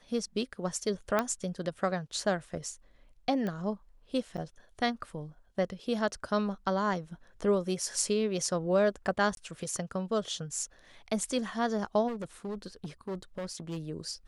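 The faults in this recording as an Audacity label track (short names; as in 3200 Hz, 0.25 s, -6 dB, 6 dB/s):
1.190000	1.190000	pop -14 dBFS
3.470000	3.470000	pop -23 dBFS
4.370000	4.380000	gap 8.3 ms
9.350000	9.370000	gap 22 ms
12.070000	13.780000	clipped -32.5 dBFS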